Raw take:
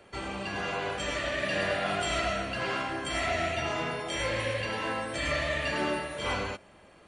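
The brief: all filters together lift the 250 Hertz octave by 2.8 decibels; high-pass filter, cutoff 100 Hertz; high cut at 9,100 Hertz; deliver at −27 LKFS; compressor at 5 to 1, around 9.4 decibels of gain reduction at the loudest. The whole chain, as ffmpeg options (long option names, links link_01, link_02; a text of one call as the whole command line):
ffmpeg -i in.wav -af "highpass=100,lowpass=9100,equalizer=frequency=250:width_type=o:gain=4,acompressor=threshold=-36dB:ratio=5,volume=11dB" out.wav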